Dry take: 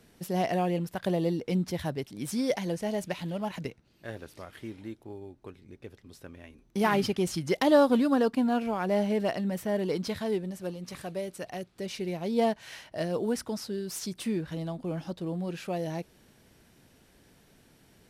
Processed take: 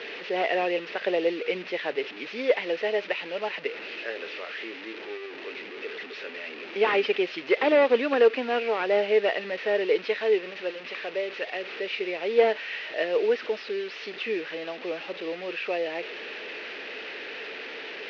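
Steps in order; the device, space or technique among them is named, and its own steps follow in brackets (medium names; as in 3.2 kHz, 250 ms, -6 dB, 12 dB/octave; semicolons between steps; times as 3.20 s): digital answering machine (band-pass 380–3300 Hz; one-bit delta coder 32 kbps, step -40.5 dBFS; cabinet simulation 360–4400 Hz, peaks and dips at 440 Hz +8 dB, 730 Hz -4 dB, 1 kHz -5 dB, 1.9 kHz +6 dB, 2.6 kHz +10 dB); trim +6 dB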